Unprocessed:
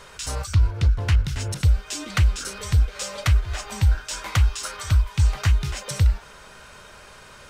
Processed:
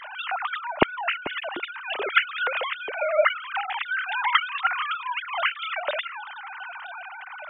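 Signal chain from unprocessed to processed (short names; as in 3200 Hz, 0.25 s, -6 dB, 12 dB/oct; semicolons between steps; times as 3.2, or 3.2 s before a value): sine-wave speech; gain -6.5 dB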